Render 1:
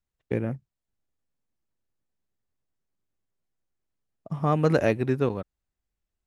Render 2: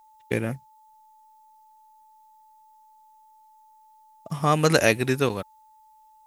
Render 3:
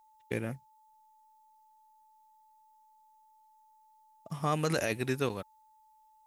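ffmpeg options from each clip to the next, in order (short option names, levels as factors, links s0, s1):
-af "aeval=exprs='val(0)+0.00141*sin(2*PI*870*n/s)':c=same,crystalizer=i=9.5:c=0"
-af "alimiter=limit=0.335:level=0:latency=1:release=27,volume=0.398"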